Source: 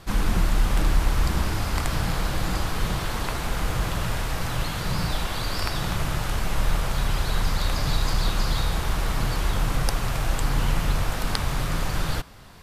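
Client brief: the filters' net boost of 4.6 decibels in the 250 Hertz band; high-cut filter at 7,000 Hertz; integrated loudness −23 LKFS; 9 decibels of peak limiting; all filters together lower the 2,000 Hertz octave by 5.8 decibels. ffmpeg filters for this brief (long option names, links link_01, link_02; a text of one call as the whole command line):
ffmpeg -i in.wav -af "lowpass=7000,equalizer=frequency=250:width_type=o:gain=7,equalizer=frequency=2000:width_type=o:gain=-8,volume=5dB,alimiter=limit=-10.5dB:level=0:latency=1" out.wav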